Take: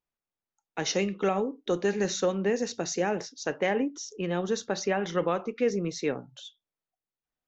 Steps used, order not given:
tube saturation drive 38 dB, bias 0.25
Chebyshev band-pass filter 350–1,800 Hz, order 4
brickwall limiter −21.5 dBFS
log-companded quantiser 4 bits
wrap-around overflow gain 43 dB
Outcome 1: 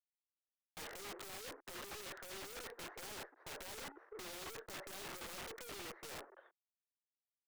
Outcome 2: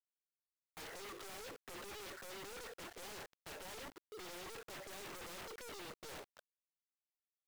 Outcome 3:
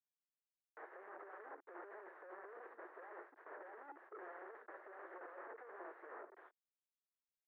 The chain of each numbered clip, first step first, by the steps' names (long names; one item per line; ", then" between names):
log-companded quantiser, then brickwall limiter, then Chebyshev band-pass filter, then tube saturation, then wrap-around overflow
brickwall limiter, then Chebyshev band-pass filter, then tube saturation, then wrap-around overflow, then log-companded quantiser
log-companded quantiser, then brickwall limiter, then tube saturation, then wrap-around overflow, then Chebyshev band-pass filter